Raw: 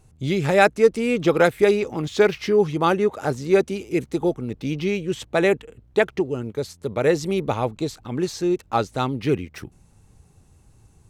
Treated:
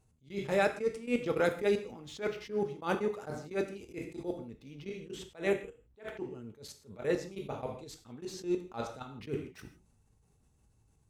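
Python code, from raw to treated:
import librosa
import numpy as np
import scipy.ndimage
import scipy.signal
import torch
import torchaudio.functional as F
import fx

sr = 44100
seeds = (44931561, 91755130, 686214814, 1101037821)

y = fx.level_steps(x, sr, step_db=21)
y = fx.rev_gated(y, sr, seeds[0], gate_ms=190, shape='falling', drr_db=6.5)
y = fx.attack_slew(y, sr, db_per_s=210.0)
y = y * 10.0 ** (-6.0 / 20.0)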